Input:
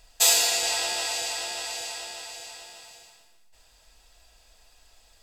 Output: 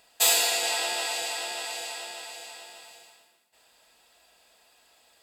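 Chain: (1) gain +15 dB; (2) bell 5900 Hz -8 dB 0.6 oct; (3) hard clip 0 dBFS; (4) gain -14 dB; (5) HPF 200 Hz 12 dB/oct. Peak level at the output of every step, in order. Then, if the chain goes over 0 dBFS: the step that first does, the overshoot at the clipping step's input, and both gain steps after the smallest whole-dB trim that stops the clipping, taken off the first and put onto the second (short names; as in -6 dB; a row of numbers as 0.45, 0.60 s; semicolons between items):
+9.0, +6.0, 0.0, -14.0, -12.0 dBFS; step 1, 6.0 dB; step 1 +9 dB, step 4 -8 dB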